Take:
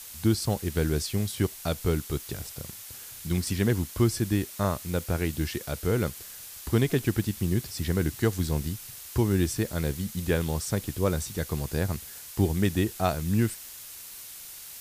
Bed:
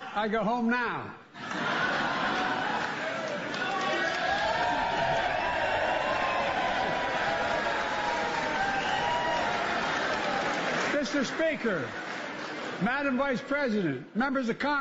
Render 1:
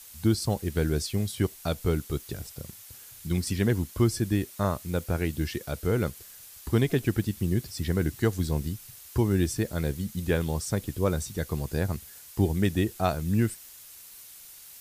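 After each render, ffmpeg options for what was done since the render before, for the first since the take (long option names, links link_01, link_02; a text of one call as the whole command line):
ffmpeg -i in.wav -af "afftdn=noise_reduction=6:noise_floor=-43" out.wav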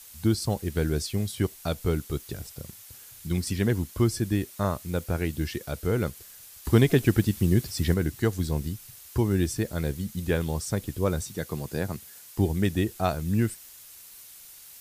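ffmpeg -i in.wav -filter_complex "[0:a]asettb=1/sr,asplit=3[link_01][link_02][link_03];[link_01]atrim=end=11.214[link_04];[link_02]atrim=start=11.21:end=12.38,asetpts=PTS-STARTPTS,afade=type=in:duration=0.004:curve=qsin,afade=type=out:start_time=1.166:duration=0.004:curve=qsin,highpass=120[link_05];[link_03]atrim=start=12.376[link_06];[link_04][link_05]acrossfade=duration=0.004:curve1=hsin:curve2=qsin[link_07];[link_07][link_06]acrossfade=duration=0.004:curve1=qsin:curve2=hsin,asplit=3[link_08][link_09][link_10];[link_08]atrim=end=6.652[link_11];[link_09]atrim=start=6.648:end=7.942,asetpts=PTS-STARTPTS,volume=4.5dB[link_12];[link_10]atrim=start=7.938[link_13];[link_11][link_12]acrossfade=duration=0.004:curve1=hsin:curve2=hsin[link_14];[link_14][link_13]acrossfade=duration=0.004:curve1=hsin:curve2=hsin" out.wav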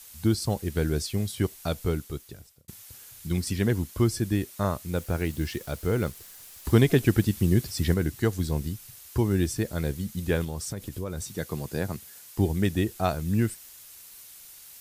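ffmpeg -i in.wav -filter_complex "[0:a]asettb=1/sr,asplit=3[link_01][link_02][link_03];[link_01]atrim=end=4.964[link_04];[link_02]atrim=start=4.96:end=6.73,asetpts=PTS-STARTPTS,afade=type=in:duration=0.004:curve=qsin,afade=type=out:start_time=1.766:duration=0.004:curve=qsin,acrusher=bits=9:dc=4:mix=0:aa=0.000001[link_05];[link_03]atrim=start=6.726[link_06];[link_04][link_05]acrossfade=duration=0.004:curve1=hsin:curve2=qsin[link_07];[link_07][link_06]acrossfade=duration=0.004:curve1=qsin:curve2=hsin,asettb=1/sr,asplit=3[link_08][link_09][link_10];[link_08]atrim=end=10.444[link_11];[link_09]atrim=start=10.44:end=11.36,asetpts=PTS-STARTPTS,afade=type=in:duration=0.004:curve=qsin,afade=type=out:start_time=0.916:duration=0.004:curve=qsin,acompressor=threshold=-29dB:ratio=6:attack=3.2:release=140:knee=1:detection=peak[link_12];[link_10]atrim=start=11.356[link_13];[link_11][link_12]acrossfade=duration=0.004:curve1=hsin:curve2=qsin[link_14];[link_14][link_13]acrossfade=duration=0.004:curve1=qsin:curve2=hsin,asplit=2[link_15][link_16];[link_15]atrim=end=2.68,asetpts=PTS-STARTPTS,afade=type=out:start_time=1.79:duration=0.89[link_17];[link_16]atrim=start=2.68,asetpts=PTS-STARTPTS,afade=type=in:duration=0.004:curve=hsin[link_18];[link_17][link_18]concat=n=2:v=0:a=1" out.wav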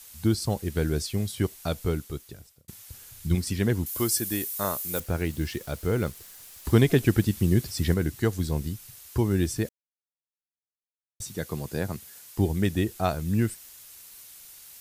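ffmpeg -i in.wav -filter_complex "[0:a]asettb=1/sr,asplit=3[link_01][link_02][link_03];[link_01]atrim=end=2.874[link_04];[link_02]atrim=start=2.87:end=3.35,asetpts=PTS-STARTPTS,afade=type=in:duration=0.004:curve=qsin,afade=type=out:start_time=0.476:duration=0.004:curve=qsin,lowshelf=frequency=120:gain=10.5[link_05];[link_03]atrim=start=3.346[link_06];[link_04][link_05]acrossfade=duration=0.004:curve1=hsin:curve2=qsin[link_07];[link_07][link_06]acrossfade=duration=0.004:curve1=qsin:curve2=hsin,asettb=1/sr,asplit=3[link_08][link_09][link_10];[link_08]atrim=end=3.864[link_11];[link_09]atrim=start=3.86:end=5,asetpts=PTS-STARTPTS,afade=type=in:duration=0.004:curve=qsin,afade=type=out:start_time=1.136:duration=0.004:curve=qsin,aemphasis=mode=production:type=bsi[link_12];[link_10]atrim=start=4.996[link_13];[link_11][link_12]acrossfade=duration=0.004:curve1=hsin:curve2=qsin[link_14];[link_14][link_13]acrossfade=duration=0.004:curve1=qsin:curve2=hsin,asplit=3[link_15][link_16][link_17];[link_15]atrim=end=9.69,asetpts=PTS-STARTPTS,afade=type=out:start_time=9.686:duration=0.004:curve=hsin[link_18];[link_16]atrim=start=9.69:end=11.2,asetpts=PTS-STARTPTS,volume=0[link_19];[link_17]atrim=start=11.2,asetpts=PTS-STARTPTS,afade=type=in:duration=0.004:curve=hsin[link_20];[link_18][link_19][link_20]concat=n=3:v=0:a=1" out.wav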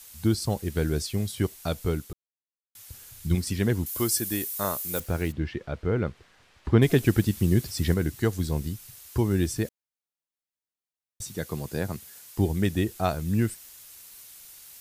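ffmpeg -i in.wav -filter_complex "[0:a]asplit=3[link_01][link_02][link_03];[link_01]afade=type=out:start_time=5.31:duration=0.02[link_04];[link_02]lowpass=2500,afade=type=in:start_time=5.31:duration=0.02,afade=type=out:start_time=6.81:duration=0.02[link_05];[link_03]afade=type=in:start_time=6.81:duration=0.02[link_06];[link_04][link_05][link_06]amix=inputs=3:normalize=0,asplit=3[link_07][link_08][link_09];[link_07]atrim=end=2.13,asetpts=PTS-STARTPTS,afade=type=out:start_time=2.126:duration=0.004:curve=hsin[link_10];[link_08]atrim=start=2.13:end=2.75,asetpts=PTS-STARTPTS,volume=0[link_11];[link_09]atrim=start=2.75,asetpts=PTS-STARTPTS,afade=type=in:duration=0.004:curve=hsin[link_12];[link_10][link_11][link_12]concat=n=3:v=0:a=1" out.wav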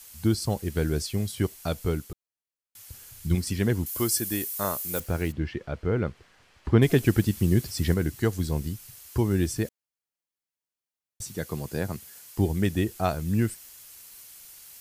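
ffmpeg -i in.wav -af "bandreject=frequency=3700:width=21" out.wav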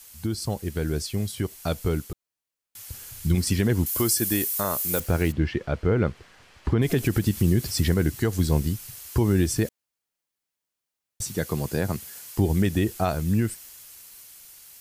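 ffmpeg -i in.wav -af "alimiter=limit=-18dB:level=0:latency=1:release=86,dynaudnorm=framelen=350:gausssize=11:maxgain=6dB" out.wav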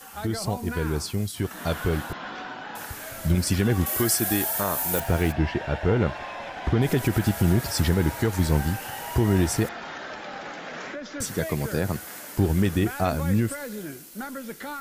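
ffmpeg -i in.wav -i bed.wav -filter_complex "[1:a]volume=-7.5dB[link_01];[0:a][link_01]amix=inputs=2:normalize=0" out.wav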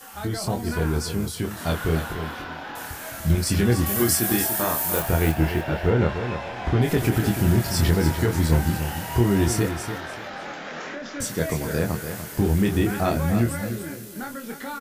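ffmpeg -i in.wav -filter_complex "[0:a]asplit=2[link_01][link_02];[link_02]adelay=25,volume=-4.5dB[link_03];[link_01][link_03]amix=inputs=2:normalize=0,aecho=1:1:293|586|879:0.355|0.0852|0.0204" out.wav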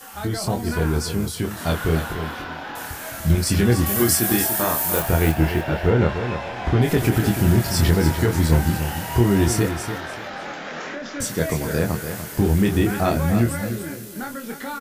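ffmpeg -i in.wav -af "volume=2.5dB" out.wav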